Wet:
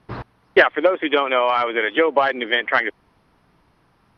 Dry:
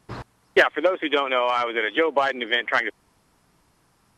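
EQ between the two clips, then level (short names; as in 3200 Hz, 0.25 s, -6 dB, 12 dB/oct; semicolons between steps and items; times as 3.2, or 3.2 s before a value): running mean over 6 samples; +4.0 dB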